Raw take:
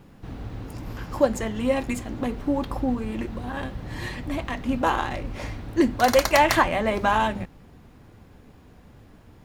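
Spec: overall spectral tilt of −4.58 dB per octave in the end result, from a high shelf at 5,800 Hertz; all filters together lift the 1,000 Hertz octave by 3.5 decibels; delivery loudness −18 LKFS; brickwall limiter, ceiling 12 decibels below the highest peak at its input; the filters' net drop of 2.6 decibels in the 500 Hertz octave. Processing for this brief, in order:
parametric band 500 Hz −5 dB
parametric band 1,000 Hz +6 dB
high-shelf EQ 5,800 Hz −4 dB
level +10 dB
brickwall limiter −5 dBFS

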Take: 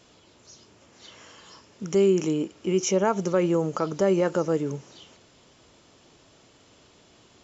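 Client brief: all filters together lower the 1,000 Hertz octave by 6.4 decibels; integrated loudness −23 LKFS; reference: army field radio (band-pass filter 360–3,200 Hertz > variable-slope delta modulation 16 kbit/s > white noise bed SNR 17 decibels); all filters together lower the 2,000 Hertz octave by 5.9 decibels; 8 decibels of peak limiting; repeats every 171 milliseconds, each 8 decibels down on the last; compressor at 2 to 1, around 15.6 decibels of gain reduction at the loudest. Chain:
parametric band 1,000 Hz −7 dB
parametric band 2,000 Hz −4.5 dB
downward compressor 2 to 1, threshold −48 dBFS
brickwall limiter −35.5 dBFS
band-pass filter 360–3,200 Hz
repeating echo 171 ms, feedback 40%, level −8 dB
variable-slope delta modulation 16 kbit/s
white noise bed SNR 17 dB
level +28 dB

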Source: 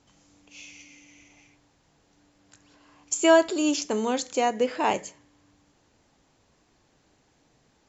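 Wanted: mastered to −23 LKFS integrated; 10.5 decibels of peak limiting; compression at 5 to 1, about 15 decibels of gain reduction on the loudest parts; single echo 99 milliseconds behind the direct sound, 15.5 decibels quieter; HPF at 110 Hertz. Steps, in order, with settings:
high-pass filter 110 Hz
downward compressor 5 to 1, threshold −30 dBFS
brickwall limiter −29 dBFS
single-tap delay 99 ms −15.5 dB
level +16.5 dB

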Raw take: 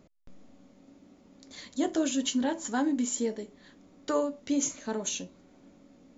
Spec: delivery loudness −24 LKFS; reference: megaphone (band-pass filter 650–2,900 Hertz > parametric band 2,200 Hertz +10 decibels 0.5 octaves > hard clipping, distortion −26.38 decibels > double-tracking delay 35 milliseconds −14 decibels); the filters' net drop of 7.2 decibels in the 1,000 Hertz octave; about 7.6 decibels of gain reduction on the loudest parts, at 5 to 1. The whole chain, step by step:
parametric band 1,000 Hz −8.5 dB
downward compressor 5 to 1, threshold −33 dBFS
band-pass filter 650–2,900 Hz
parametric band 2,200 Hz +10 dB 0.5 octaves
hard clipping −32.5 dBFS
double-tracking delay 35 ms −14 dB
level +22 dB

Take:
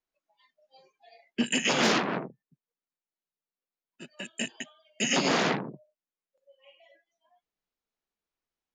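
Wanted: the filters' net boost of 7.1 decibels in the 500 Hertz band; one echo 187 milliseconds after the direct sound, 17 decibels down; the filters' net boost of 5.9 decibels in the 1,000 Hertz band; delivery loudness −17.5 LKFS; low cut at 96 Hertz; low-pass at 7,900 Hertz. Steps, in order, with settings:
high-pass filter 96 Hz
low-pass filter 7,900 Hz
parametric band 500 Hz +7.5 dB
parametric band 1,000 Hz +5 dB
single-tap delay 187 ms −17 dB
level +7 dB

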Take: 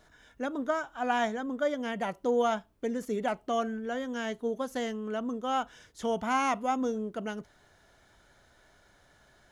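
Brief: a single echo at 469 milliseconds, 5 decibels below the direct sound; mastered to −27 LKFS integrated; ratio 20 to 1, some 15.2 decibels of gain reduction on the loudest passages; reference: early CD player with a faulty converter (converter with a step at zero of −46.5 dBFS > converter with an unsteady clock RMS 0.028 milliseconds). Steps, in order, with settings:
downward compressor 20 to 1, threshold −38 dBFS
single-tap delay 469 ms −5 dB
converter with a step at zero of −46.5 dBFS
converter with an unsteady clock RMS 0.028 ms
level +14 dB

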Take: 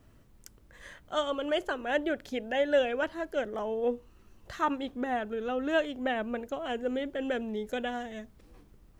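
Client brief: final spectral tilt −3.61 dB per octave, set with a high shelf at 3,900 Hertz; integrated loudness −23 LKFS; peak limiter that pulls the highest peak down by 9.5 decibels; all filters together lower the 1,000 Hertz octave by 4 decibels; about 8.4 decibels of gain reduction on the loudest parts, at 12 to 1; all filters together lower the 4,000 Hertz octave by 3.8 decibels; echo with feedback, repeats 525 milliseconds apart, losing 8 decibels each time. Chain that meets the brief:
parametric band 1,000 Hz −5.5 dB
high-shelf EQ 3,900 Hz −3 dB
parametric band 4,000 Hz −3.5 dB
downward compressor 12 to 1, threshold −31 dBFS
brickwall limiter −32.5 dBFS
repeating echo 525 ms, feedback 40%, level −8 dB
level +17.5 dB

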